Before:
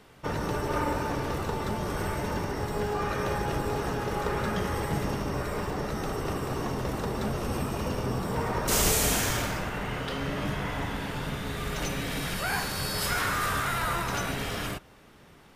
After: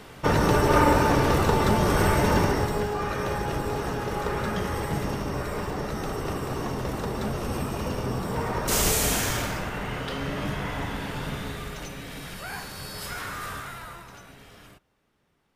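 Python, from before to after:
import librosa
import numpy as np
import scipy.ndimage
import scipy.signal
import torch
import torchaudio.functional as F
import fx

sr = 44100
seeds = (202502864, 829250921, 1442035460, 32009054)

y = fx.gain(x, sr, db=fx.line((2.46, 9.5), (2.91, 1.0), (11.42, 1.0), (11.87, -6.5), (13.52, -6.5), (14.22, -17.0)))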